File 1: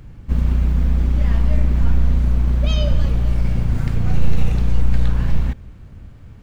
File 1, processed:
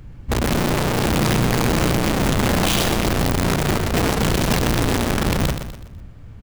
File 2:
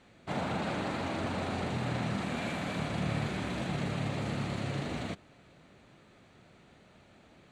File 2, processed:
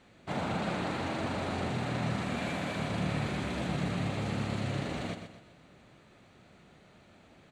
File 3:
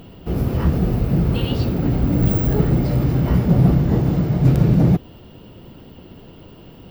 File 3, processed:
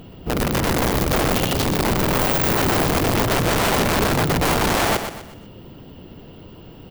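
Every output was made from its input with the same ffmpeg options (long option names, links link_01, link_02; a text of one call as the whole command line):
ffmpeg -i in.wav -af "aeval=exprs='(mod(5.31*val(0)+1,2)-1)/5.31':channel_layout=same,aecho=1:1:124|248|372|496:0.376|0.147|0.0572|0.0223" out.wav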